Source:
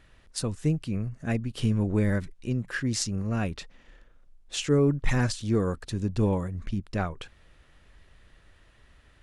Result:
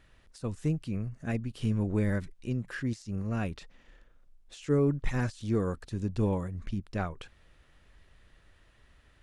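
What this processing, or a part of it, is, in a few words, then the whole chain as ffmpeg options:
de-esser from a sidechain: -filter_complex "[0:a]asplit=2[link_01][link_02];[link_02]highpass=6000,apad=whole_len=406630[link_03];[link_01][link_03]sidechaincompress=threshold=-48dB:ratio=16:attack=2.9:release=40,volume=-3.5dB"

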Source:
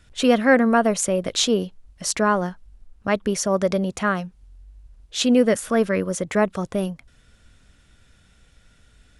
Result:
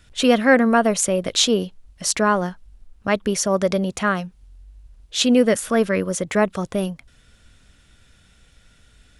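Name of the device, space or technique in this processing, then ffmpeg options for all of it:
presence and air boost: -af "equalizer=frequency=3300:width_type=o:width=1.4:gain=2.5,highshelf=frequency=9700:gain=4.5,volume=1dB"

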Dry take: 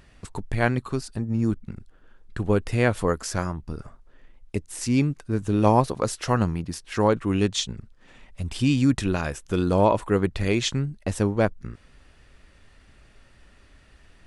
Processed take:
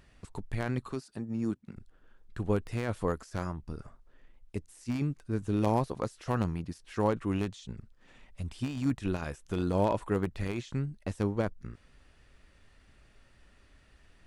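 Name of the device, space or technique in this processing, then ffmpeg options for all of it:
de-esser from a sidechain: -filter_complex "[0:a]asettb=1/sr,asplit=3[link_01][link_02][link_03];[link_01]atrim=end=0.924[link_04];[link_02]atrim=start=0.92:end=1.76,asetpts=PTS-STARTPTS,afade=type=in:duration=0.004:curve=qsin,afade=type=out:start_time=0.836:duration=0.004:curve=qsin,highpass=160[link_05];[link_03]atrim=start=1.756[link_06];[link_04][link_05]acrossfade=duration=0.004:curve1=hsin:curve2=qsin[link_07];[link_07][link_06]acrossfade=duration=0.004:curve1=qsin:curve2=hsin,asplit=2[link_08][link_09];[link_09]highpass=5800,apad=whole_len=628961[link_10];[link_08][link_10]sidechaincompress=threshold=-46dB:ratio=8:attack=0.65:release=25,volume=-6.5dB"

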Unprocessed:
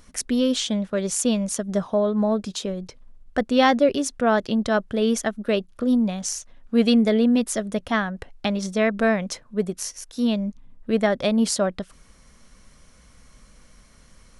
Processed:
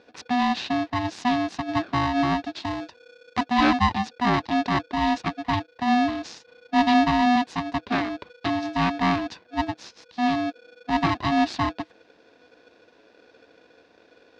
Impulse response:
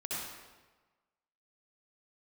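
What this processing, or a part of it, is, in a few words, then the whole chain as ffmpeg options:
ring modulator pedal into a guitar cabinet: -filter_complex "[0:a]aeval=exprs='val(0)*sgn(sin(2*PI*490*n/s))':channel_layout=same,highpass=93,equalizer=frequency=130:width_type=q:width=4:gain=-5,equalizer=frequency=320:width_type=q:width=4:gain=4,equalizer=frequency=500:width_type=q:width=4:gain=-9,equalizer=frequency=1300:width_type=q:width=4:gain=-7,equalizer=frequency=2200:width_type=q:width=4:gain=-5,equalizer=frequency=3100:width_type=q:width=4:gain=-6,lowpass=frequency=4000:width=0.5412,lowpass=frequency=4000:width=1.3066,asettb=1/sr,asplit=3[link_01][link_02][link_03];[link_01]atrim=end=2.604[link_04];[link_02]atrim=start=2.6:end=3.44,asetpts=PTS-STARTPTS,afade=type=in:duration=0.004:curve=qsin,afade=type=out:start_time=0.836:duration=0.004:curve=qsin,equalizer=frequency=8100:width_type=o:width=1.2:gain=5[link_05];[link_03]atrim=start=3.436[link_06];[link_04][link_05]acrossfade=duration=0.004:curve1=hsin:curve2=qsin[link_07];[link_07][link_06]acrossfade=duration=0.004:curve1=qsin:curve2=hsin"

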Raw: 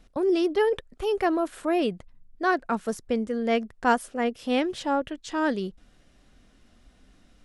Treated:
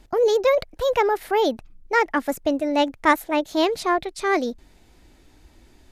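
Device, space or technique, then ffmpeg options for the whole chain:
nightcore: -af "asetrate=55566,aresample=44100,volume=4.5dB"

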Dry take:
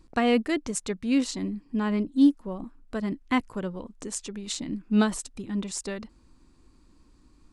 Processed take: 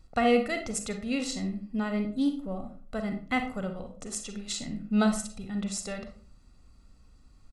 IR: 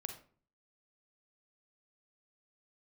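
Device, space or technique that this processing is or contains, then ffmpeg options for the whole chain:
microphone above a desk: -filter_complex "[0:a]aecho=1:1:1.5:0.7[link_01];[1:a]atrim=start_sample=2205[link_02];[link_01][link_02]afir=irnorm=-1:irlink=0"

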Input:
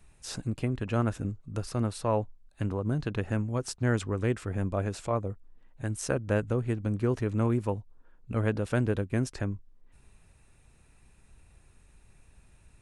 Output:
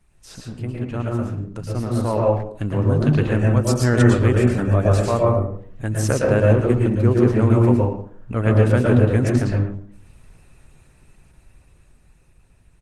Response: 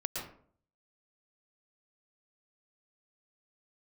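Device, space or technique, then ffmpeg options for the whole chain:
speakerphone in a meeting room: -filter_complex "[1:a]atrim=start_sample=2205[link_01];[0:a][link_01]afir=irnorm=-1:irlink=0,asplit=2[link_02][link_03];[link_03]adelay=110,highpass=300,lowpass=3400,asoftclip=type=hard:threshold=-19dB,volume=-12dB[link_04];[link_02][link_04]amix=inputs=2:normalize=0,dynaudnorm=framelen=620:gausssize=7:maxgain=14dB,volume=-1dB" -ar 48000 -c:a libopus -b:a 16k

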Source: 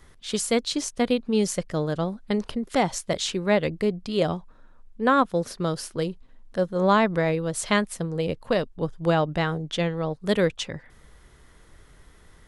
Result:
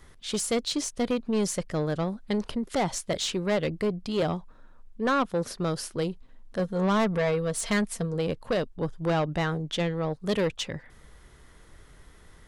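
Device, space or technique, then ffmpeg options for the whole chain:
saturation between pre-emphasis and de-emphasis: -filter_complex "[0:a]asettb=1/sr,asplit=3[link_01][link_02][link_03];[link_01]atrim=end=6.594[link_04];[link_02]atrim=start=6.59:end=8.14,asetpts=PTS-STARTPTS,afade=type=in:duration=0.004:curve=qsin,afade=type=out:start_time=1.546:duration=0.004:curve=qsin,aecho=1:1:4.4:0.47,atrim=end_sample=68355[link_05];[link_03]atrim=start=8.136[link_06];[link_04][link_05]acrossfade=duration=0.004:curve1=hsin:curve2=qsin[link_07];[link_07][link_06]acrossfade=duration=0.004:curve1=qsin:curve2=hsin,highshelf=frequency=9800:gain=8,asoftclip=type=tanh:threshold=-20dB,highshelf=frequency=9800:gain=-8"

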